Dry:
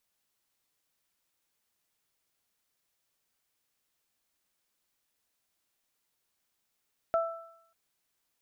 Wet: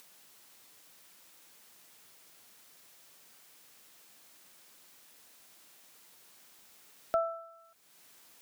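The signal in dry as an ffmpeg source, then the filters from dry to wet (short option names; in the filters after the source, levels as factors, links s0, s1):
-f lavfi -i "aevalsrc='0.075*pow(10,-3*t/0.67)*sin(2*PI*664*t)+0.0376*pow(10,-3*t/0.82)*sin(2*PI*1328*t)':d=0.59:s=44100"
-filter_complex "[0:a]acrossover=split=110[s0][s1];[s1]acompressor=mode=upward:threshold=0.00891:ratio=2.5[s2];[s0][s2]amix=inputs=2:normalize=0"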